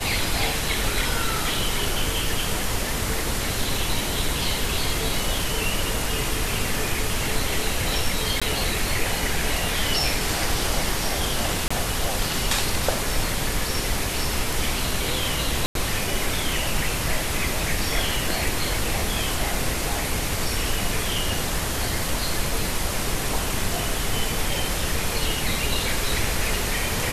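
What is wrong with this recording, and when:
8.40–8.42 s: dropout 16 ms
11.68–11.71 s: dropout 25 ms
15.66–15.75 s: dropout 92 ms

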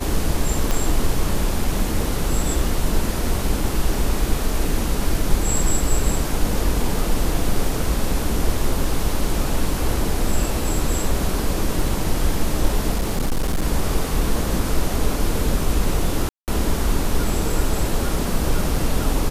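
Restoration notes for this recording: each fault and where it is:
0.71 s: pop -7 dBFS
12.94–13.65 s: clipped -16 dBFS
16.29–16.48 s: dropout 188 ms

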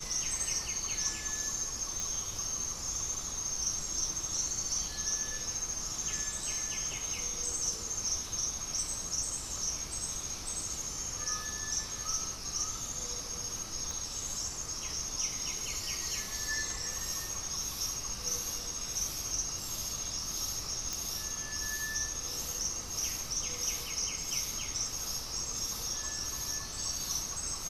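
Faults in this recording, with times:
2.00 s: pop -21 dBFS
13.91 s: pop
20.93 s: pop

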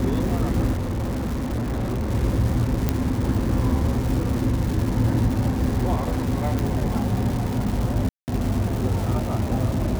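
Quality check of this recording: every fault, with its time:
crackle 580 per s -28 dBFS
0.72–2.10 s: clipped -22 dBFS
2.89 s: pop -7 dBFS
6.59 s: pop
8.09–8.28 s: dropout 189 ms

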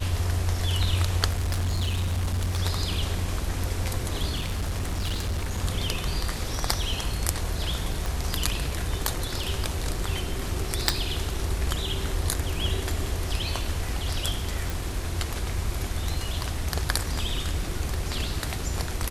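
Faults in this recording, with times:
1.30–2.60 s: clipped -22.5 dBFS
4.37–5.59 s: clipped -24 dBFS
8.06 s: pop
10.89 s: pop
14.70 s: pop

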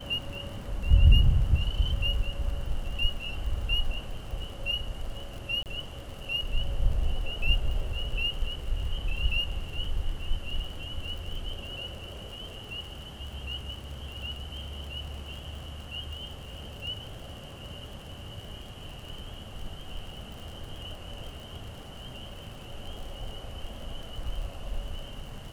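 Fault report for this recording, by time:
crackle 56 per s -38 dBFS
5.63–5.66 s: dropout 28 ms

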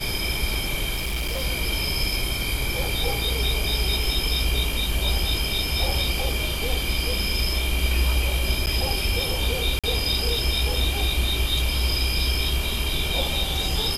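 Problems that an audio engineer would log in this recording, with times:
0.95–1.43 s: clipped -23 dBFS
4.03 s: dropout 2.4 ms
8.66–8.67 s: dropout 9.2 ms
9.79–9.84 s: dropout 46 ms

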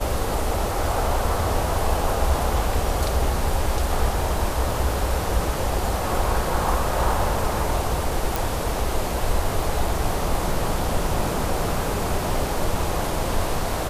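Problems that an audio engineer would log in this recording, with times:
8.36 s: pop

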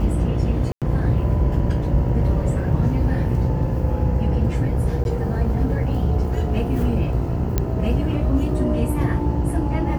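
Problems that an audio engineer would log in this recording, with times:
buzz 60 Hz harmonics 17 -25 dBFS
0.72–0.82 s: dropout 97 ms
5.04–5.05 s: dropout 11 ms
7.58 s: pop -6 dBFS

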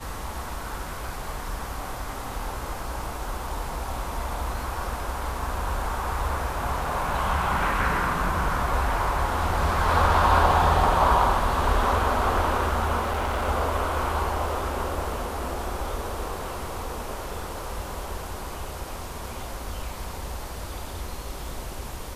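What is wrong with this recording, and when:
13.00–13.48 s: clipped -23 dBFS

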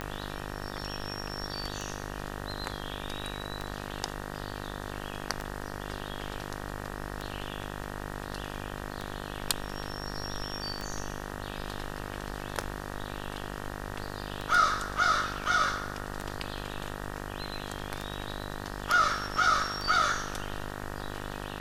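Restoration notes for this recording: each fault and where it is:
buzz 50 Hz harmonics 38 -39 dBFS
tick 33 1/3 rpm -20 dBFS

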